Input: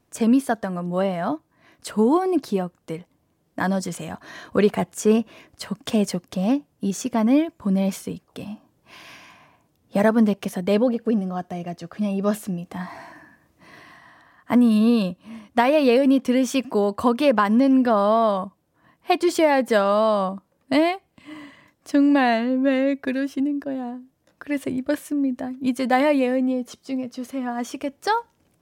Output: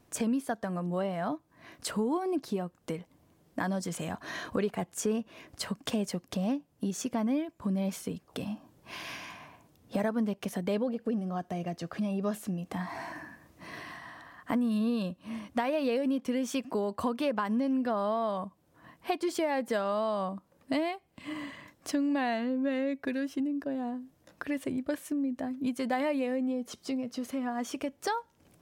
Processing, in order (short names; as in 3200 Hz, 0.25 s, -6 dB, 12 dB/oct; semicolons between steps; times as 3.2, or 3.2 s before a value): compressor 2.5:1, threshold -38 dBFS, peak gain reduction 17 dB; gain +3 dB